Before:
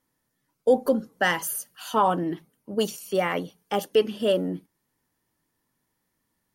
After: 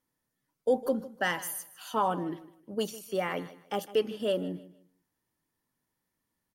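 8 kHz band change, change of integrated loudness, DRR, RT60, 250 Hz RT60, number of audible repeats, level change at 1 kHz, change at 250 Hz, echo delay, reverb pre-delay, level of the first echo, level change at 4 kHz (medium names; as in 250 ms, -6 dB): -6.5 dB, -6.5 dB, no reverb, no reverb, no reverb, 2, -6.5 dB, -6.5 dB, 154 ms, no reverb, -17.0 dB, -6.5 dB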